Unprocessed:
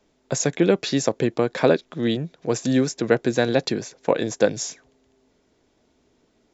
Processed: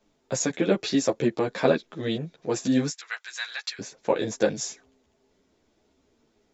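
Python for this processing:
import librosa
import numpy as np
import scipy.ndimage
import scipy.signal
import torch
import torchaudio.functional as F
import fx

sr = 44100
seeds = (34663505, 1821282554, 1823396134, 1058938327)

y = fx.highpass(x, sr, hz=1300.0, slope=24, at=(2.9, 3.79))
y = fx.ensemble(y, sr)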